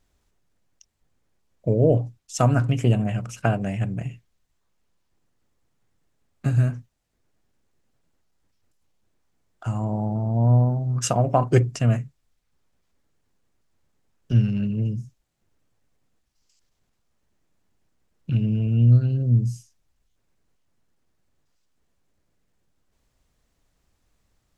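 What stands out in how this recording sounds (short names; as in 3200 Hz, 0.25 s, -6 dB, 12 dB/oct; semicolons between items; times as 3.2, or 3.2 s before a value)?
noise floor -72 dBFS; spectral tilt -8.5 dB/oct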